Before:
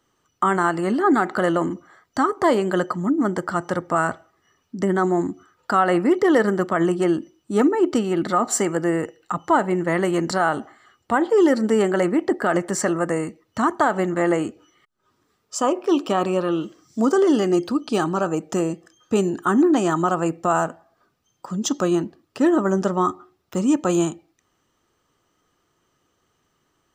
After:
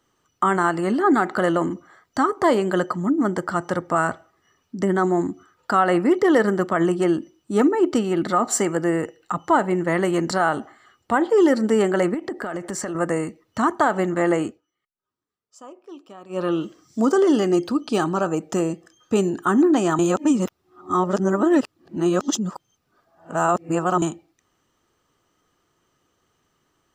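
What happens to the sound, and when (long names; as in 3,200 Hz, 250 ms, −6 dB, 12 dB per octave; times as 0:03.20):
0:12.14–0:12.95: downward compressor 5 to 1, threshold −25 dBFS
0:14.46–0:16.44: duck −21.5 dB, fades 0.15 s
0:19.99–0:24.02: reverse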